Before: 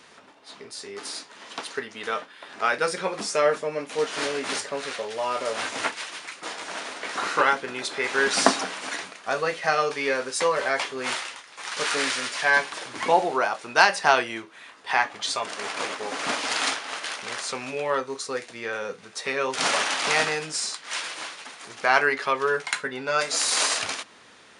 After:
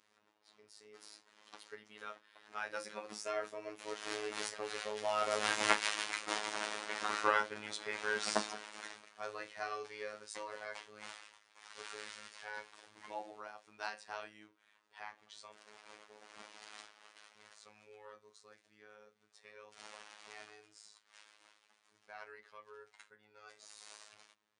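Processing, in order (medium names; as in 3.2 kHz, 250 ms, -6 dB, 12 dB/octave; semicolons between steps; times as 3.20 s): Doppler pass-by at 5.98 s, 9 m/s, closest 4.4 m; robot voice 106 Hz; trim +1 dB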